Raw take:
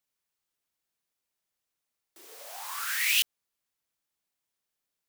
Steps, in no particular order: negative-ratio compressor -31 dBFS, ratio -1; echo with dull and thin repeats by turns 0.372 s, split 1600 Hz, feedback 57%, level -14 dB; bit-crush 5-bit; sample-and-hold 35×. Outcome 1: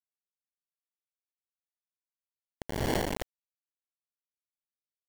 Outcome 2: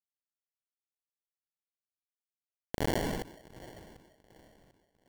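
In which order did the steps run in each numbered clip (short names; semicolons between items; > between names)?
sample-and-hold > negative-ratio compressor > echo with dull and thin repeats by turns > bit-crush; bit-crush > negative-ratio compressor > echo with dull and thin repeats by turns > sample-and-hold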